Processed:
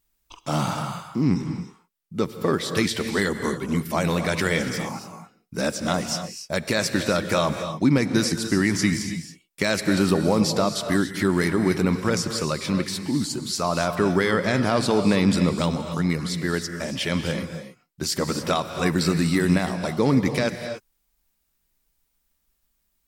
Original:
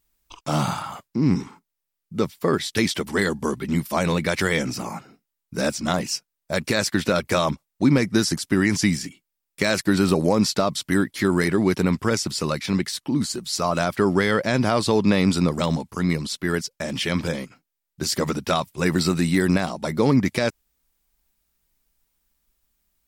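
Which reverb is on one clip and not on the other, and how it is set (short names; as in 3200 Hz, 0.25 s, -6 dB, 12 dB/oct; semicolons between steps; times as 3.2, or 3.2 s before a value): non-linear reverb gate 0.31 s rising, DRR 7.5 dB; gain -1.5 dB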